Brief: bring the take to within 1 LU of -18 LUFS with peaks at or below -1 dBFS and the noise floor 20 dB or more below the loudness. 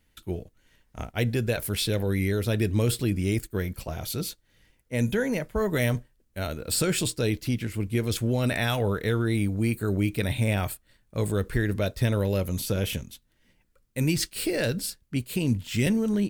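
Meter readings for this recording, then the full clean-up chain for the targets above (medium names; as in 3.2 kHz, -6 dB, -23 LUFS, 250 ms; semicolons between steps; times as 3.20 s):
loudness -27.5 LUFS; peak level -9.5 dBFS; loudness target -18.0 LUFS
-> trim +9.5 dB; peak limiter -1 dBFS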